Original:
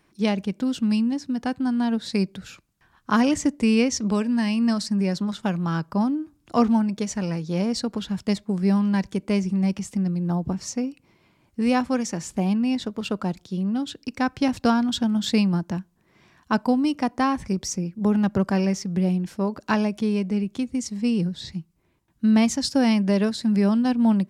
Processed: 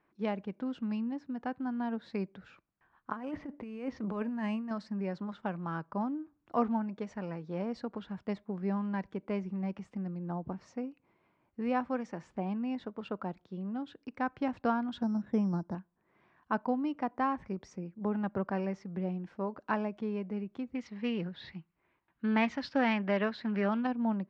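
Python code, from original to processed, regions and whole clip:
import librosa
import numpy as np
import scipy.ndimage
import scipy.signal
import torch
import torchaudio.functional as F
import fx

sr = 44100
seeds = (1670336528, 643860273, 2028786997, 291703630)

y = fx.chain(x, sr, fx.high_shelf(hz=6900.0, db=-7.0),
    fx.over_compress(threshold_db=-23.0, ratio=-0.5),
    fx.resample_bad(factor=4, down='filtered', up='hold'), at=(3.12, 4.71))
y = fx.chain(y, sr, fx.lowpass(hz=1500.0, slope=12),
    fx.low_shelf(hz=280.0, db=5.5),
    fx.resample_bad(factor=8, down='filtered', up='hold'), at=(15.02, 15.75))
y = fx.chain(y, sr, fx.lowpass(hz=5200.0, slope=12),
    fx.peak_eq(hz=2600.0, db=11.5, octaves=2.7),
    fx.doppler_dist(depth_ms=0.15), at=(20.75, 23.87))
y = scipy.signal.sosfilt(scipy.signal.butter(2, 1600.0, 'lowpass', fs=sr, output='sos'), y)
y = fx.low_shelf(y, sr, hz=270.0, db=-12.0)
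y = y * librosa.db_to_amplitude(-5.5)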